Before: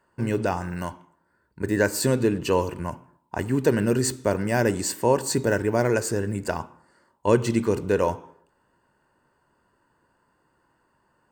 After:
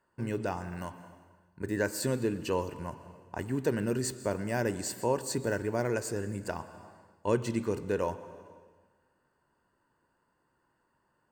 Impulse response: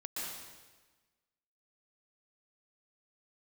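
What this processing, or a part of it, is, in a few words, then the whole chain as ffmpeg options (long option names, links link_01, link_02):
ducked reverb: -filter_complex "[0:a]asplit=3[link_01][link_02][link_03];[1:a]atrim=start_sample=2205[link_04];[link_02][link_04]afir=irnorm=-1:irlink=0[link_05];[link_03]apad=whole_len=499059[link_06];[link_05][link_06]sidechaincompress=threshold=-31dB:ratio=3:attack=26:release=390,volume=-9dB[link_07];[link_01][link_07]amix=inputs=2:normalize=0,volume=-9dB"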